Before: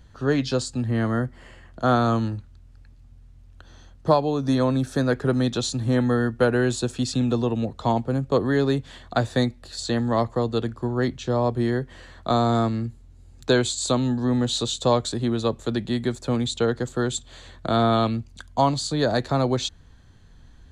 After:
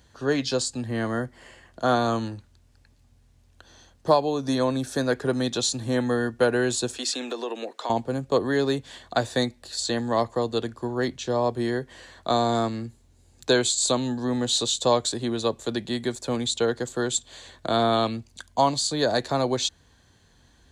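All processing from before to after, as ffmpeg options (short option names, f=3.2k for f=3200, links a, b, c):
-filter_complex "[0:a]asettb=1/sr,asplit=3[a][b][c];[a]atrim=end=6.984[d];[b]atrim=start=6.98:end=7.9,asetpts=PTS-STARTPTS,afade=t=in:d=0.004:c=qsin,afade=t=out:st=0.916:d=0.004:c=qsin,highpass=f=310:w=0.5412,highpass=f=310:w=1.3066,equalizer=f=1.9k:w=1:g=7,acompressor=threshold=-25dB:ratio=5:attack=3.2:release=140:knee=1:detection=peak[e];[c]atrim=start=7.896[f];[d][e]acrossfade=d=0.004:c1=hsin:c2=qsin[g];[g][f]acrossfade=d=0.004:c1=qsin:c2=hsin,highpass=48,bass=f=250:g=-8,treble=f=4k:g=5,bandreject=f=1.3k:w=11"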